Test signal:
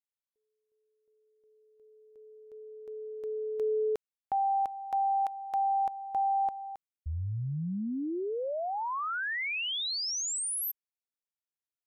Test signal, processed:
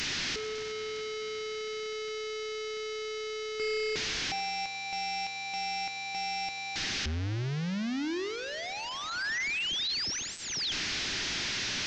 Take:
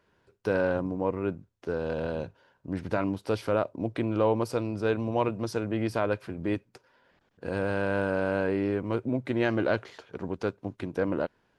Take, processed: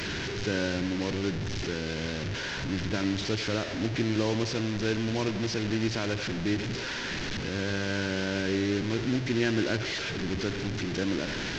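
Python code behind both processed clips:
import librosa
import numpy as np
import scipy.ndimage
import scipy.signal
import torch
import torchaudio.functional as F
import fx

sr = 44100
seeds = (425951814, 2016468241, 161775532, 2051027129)

y = fx.delta_mod(x, sr, bps=32000, step_db=-26.5)
y = fx.band_shelf(y, sr, hz=770.0, db=-9.5, octaves=1.7)
y = fx.echo_banded(y, sr, ms=90, feedback_pct=81, hz=730.0, wet_db=-11)
y = y * 10.0 ** (1.0 / 20.0)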